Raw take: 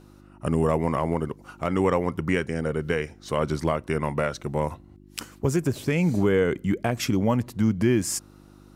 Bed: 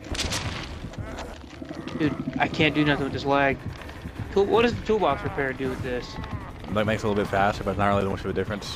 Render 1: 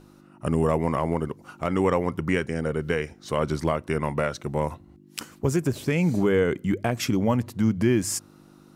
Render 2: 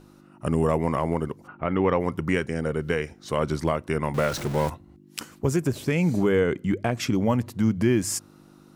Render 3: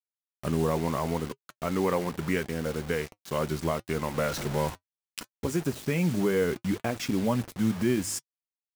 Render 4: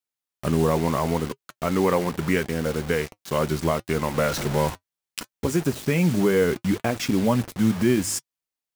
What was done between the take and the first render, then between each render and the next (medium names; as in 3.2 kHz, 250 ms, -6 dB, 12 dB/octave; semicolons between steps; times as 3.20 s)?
de-hum 50 Hz, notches 2
1.46–1.99 s: low-pass 1.9 kHz -> 5.1 kHz 24 dB/octave; 4.14–4.70 s: jump at every zero crossing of -29 dBFS; 6.41–7.15 s: treble shelf 11 kHz -10.5 dB
bit crusher 6-bit; flange 0.73 Hz, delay 3.6 ms, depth 2 ms, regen -65%
trim +5.5 dB